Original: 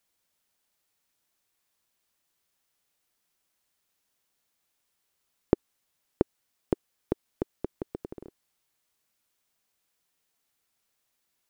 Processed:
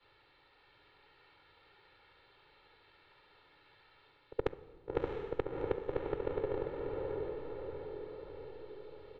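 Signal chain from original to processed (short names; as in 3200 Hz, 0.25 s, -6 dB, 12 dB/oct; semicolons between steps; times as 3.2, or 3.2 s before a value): short-time reversal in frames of 0.175 s; elliptic low-pass 3300 Hz, stop band 40 dB; comb 2.8 ms, depth 68%; reverse; compressor 4:1, threshold -43 dBFS, peak gain reduction 20 dB; reverse; varispeed +25%; diffused feedback echo 0.66 s, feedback 45%, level -3 dB; on a send at -14 dB: reverb RT60 1.2 s, pre-delay 7 ms; on the sum: three-band squash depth 40%; gain +10.5 dB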